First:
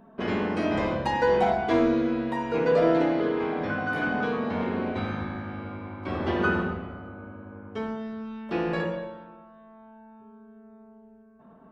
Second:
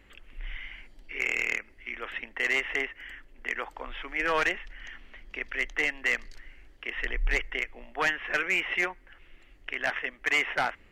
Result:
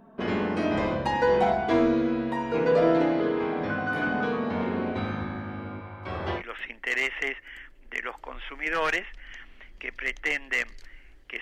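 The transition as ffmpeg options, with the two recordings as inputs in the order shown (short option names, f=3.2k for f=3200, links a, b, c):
-filter_complex "[0:a]asettb=1/sr,asplit=3[a][b][c];[a]atrim=end=5.804[d];[b]atrim=start=5.8:end=6.43,asetpts=PTS-STARTPTS,afade=t=in:d=0.004:c=qsin,afade=t=out:st=0.626:d=0.004:c=qsin,equalizer=f=260:w=1.7:g=-12.5[e];[c]atrim=start=6.426[f];[d][e]acrossfade=d=0.004:c1=hsin:c2=qsin[g];[g][f]acrossfade=d=0.004:c1=qsin:c2=hsin,apad=whole_dur=11.41,atrim=end=11.41,atrim=end=6.43,asetpts=PTS-STARTPTS[h];[1:a]atrim=start=1.88:end=6.94,asetpts=PTS-STARTPTS[i];[h][i]acrossfade=d=0.08:c1=tri:c2=tri"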